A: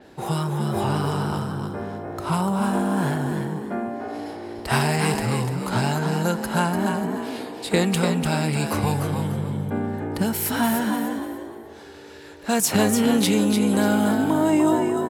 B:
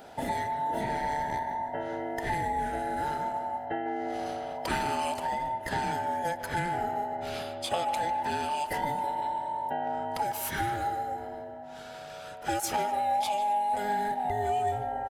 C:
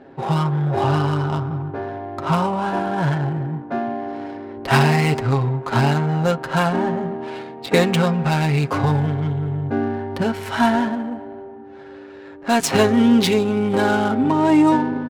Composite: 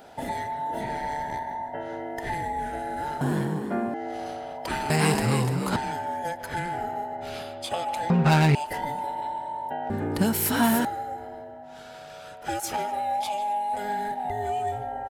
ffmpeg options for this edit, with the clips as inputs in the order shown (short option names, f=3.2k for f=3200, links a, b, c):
-filter_complex "[0:a]asplit=3[a][b][c];[1:a]asplit=5[d][e][f][g][h];[d]atrim=end=3.212[i];[a]atrim=start=3.208:end=3.942[j];[e]atrim=start=3.938:end=4.902[k];[b]atrim=start=4.898:end=5.762[l];[f]atrim=start=5.758:end=8.102[m];[2:a]atrim=start=8.098:end=8.552[n];[g]atrim=start=8.548:end=9.902[o];[c]atrim=start=9.898:end=10.852[p];[h]atrim=start=10.848[q];[i][j]acrossfade=d=0.004:c1=hsin:c2=hsin[r];[r][k]acrossfade=d=0.004:c1=hsin:c2=hsin[s];[s][l]acrossfade=d=0.004:c1=hsin:c2=hsin[t];[t][m]acrossfade=d=0.004:c1=hsin:c2=hsin[u];[u][n]acrossfade=d=0.004:c1=hsin:c2=hsin[v];[v][o]acrossfade=d=0.004:c1=hsin:c2=hsin[w];[w][p]acrossfade=d=0.004:c1=hsin:c2=hsin[x];[x][q]acrossfade=d=0.004:c1=hsin:c2=hsin"